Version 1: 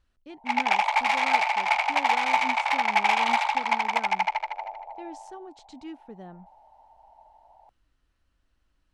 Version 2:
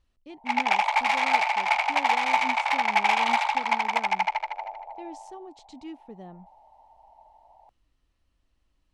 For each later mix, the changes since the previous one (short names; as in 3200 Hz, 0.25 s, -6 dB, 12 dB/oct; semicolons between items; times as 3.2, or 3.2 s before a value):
speech: add bell 1500 Hz -9.5 dB 0.33 oct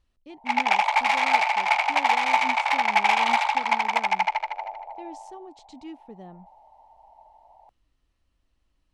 reverb: on